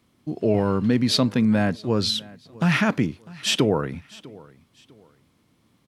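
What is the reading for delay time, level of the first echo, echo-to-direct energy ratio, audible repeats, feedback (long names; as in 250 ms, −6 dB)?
650 ms, −22.0 dB, −21.5 dB, 2, 31%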